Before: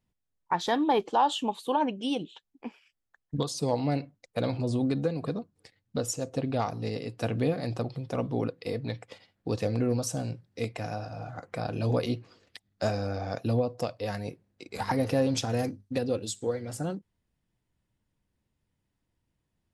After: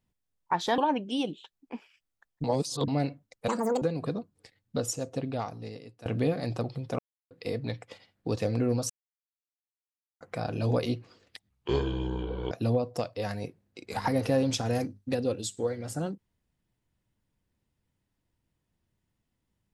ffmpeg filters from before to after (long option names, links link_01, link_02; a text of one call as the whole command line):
ffmpeg -i in.wav -filter_complex "[0:a]asplit=13[link_01][link_02][link_03][link_04][link_05][link_06][link_07][link_08][link_09][link_10][link_11][link_12][link_13];[link_01]atrim=end=0.782[link_14];[link_02]atrim=start=1.698:end=3.362[link_15];[link_03]atrim=start=3.358:end=3.802,asetpts=PTS-STARTPTS,areverse[link_16];[link_04]atrim=start=3.798:end=4.404[link_17];[link_05]atrim=start=4.4:end=5.02,asetpts=PTS-STARTPTS,asetrate=81144,aresample=44100[link_18];[link_06]atrim=start=5.016:end=7.26,asetpts=PTS-STARTPTS,afade=type=out:start_time=1.064:duration=1.18:silence=0.11885[link_19];[link_07]atrim=start=7.26:end=8.19,asetpts=PTS-STARTPTS,afade=type=in:duration=0.004:curve=hsin:silence=0.11885,afade=type=out:start_time=0.926:duration=0.004:curve=hsin[link_20];[link_08]atrim=start=8.19:end=8.51,asetpts=PTS-STARTPTS,volume=0[link_21];[link_09]atrim=start=8.51:end=10.1,asetpts=PTS-STARTPTS,afade=type=in:duration=0.004:curve=hsin,afade=type=out:start_time=1.586:duration=0.004:curve=hsin[link_22];[link_10]atrim=start=10.1:end=11.41,asetpts=PTS-STARTPTS,volume=0[link_23];[link_11]atrim=start=11.41:end=12.704,asetpts=PTS-STARTPTS,afade=type=in:duration=0.004:curve=hsin[link_24];[link_12]atrim=start=12.7:end=13.35,asetpts=PTS-STARTPTS,asetrate=28224,aresample=44100,atrim=end_sample=44789,asetpts=PTS-STARTPTS[link_25];[link_13]atrim=start=13.346[link_26];[link_14][link_15]acrossfade=duration=0.004:curve1=hsin:curve2=hsin[link_27];[link_27][link_16]acrossfade=duration=0.004:curve1=hsin:curve2=hsin[link_28];[link_28][link_17]acrossfade=duration=0.004:curve1=hsin:curve2=hsin[link_29];[link_29][link_18]acrossfade=duration=0.004:curve1=hsin:curve2=hsin[link_30];[link_19][link_20][link_21][link_22][link_23][link_24]concat=n=6:v=0:a=1[link_31];[link_30][link_31]acrossfade=duration=0.004:curve1=hsin:curve2=hsin[link_32];[link_32][link_25]acrossfade=duration=0.004:curve1=hsin:curve2=hsin[link_33];[link_33][link_26]acrossfade=duration=0.004:curve1=hsin:curve2=hsin" out.wav